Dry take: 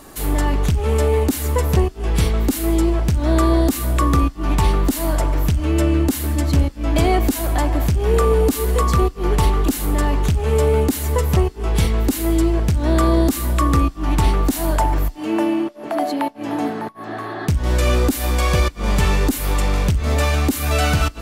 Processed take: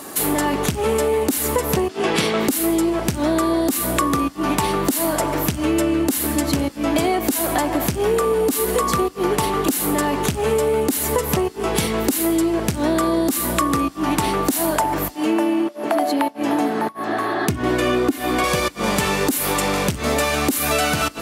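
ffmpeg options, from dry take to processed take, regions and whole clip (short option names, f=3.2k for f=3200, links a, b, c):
-filter_complex "[0:a]asettb=1/sr,asplit=3[a][b][c];[a]atrim=end=1.894[d];[b]atrim=start=1.89:end=2.48,asetpts=PTS-STARTPTS,afade=t=in:d=0.004:c=qsin,afade=t=out:st=0.586:d=0.004:c=qsin,aemphasis=mode=production:type=75fm,acontrast=59,highpass=160,lowpass=3.3k[e];[c]atrim=start=2.476[f];[d][e]acrossfade=d=0.004:c1=hsin:c2=qsin[g];[g][f]acrossfade=d=0.004:c1=qsin:c2=hsin,asettb=1/sr,asplit=3[h][i][j];[h]atrim=end=17.494[k];[i]atrim=start=17.49:end=18.44,asetpts=PTS-STARTPTS,afade=t=in:d=0.004:c=qsin,afade=t=out:st=0.946:d=0.004:c=qsin,highpass=140,bass=f=250:g=10,treble=f=4k:g=-11,aecho=1:1:2.8:0.68,atrim=end_sample=41895[l];[j]atrim=start=18.436[m];[k][l]acrossfade=d=0.004:c1=hsin:c2=qsin[n];[n][m]acrossfade=d=0.004:c1=qsin:c2=hsin,highpass=190,equalizer=f=11k:w=1.1:g=4.5,acompressor=threshold=-23dB:ratio=6,volume=7dB"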